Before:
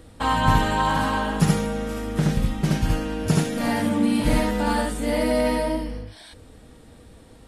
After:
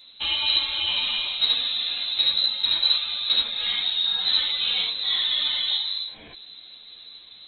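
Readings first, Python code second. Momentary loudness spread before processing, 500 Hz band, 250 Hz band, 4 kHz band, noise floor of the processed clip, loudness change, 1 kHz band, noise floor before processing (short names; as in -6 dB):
7 LU, -23.5 dB, under -30 dB, +16.5 dB, -47 dBFS, +1.5 dB, -17.0 dB, -48 dBFS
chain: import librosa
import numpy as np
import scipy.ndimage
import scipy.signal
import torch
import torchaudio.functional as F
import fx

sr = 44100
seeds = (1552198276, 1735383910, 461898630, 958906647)

y = fx.rider(x, sr, range_db=10, speed_s=0.5)
y = fx.freq_invert(y, sr, carrier_hz=4000)
y = fx.ensemble(y, sr)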